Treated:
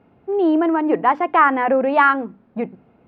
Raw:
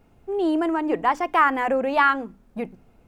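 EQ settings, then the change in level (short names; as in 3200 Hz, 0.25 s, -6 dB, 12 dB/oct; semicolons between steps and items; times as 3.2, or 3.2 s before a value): HPF 140 Hz 12 dB/oct; air absorption 410 m; +6.5 dB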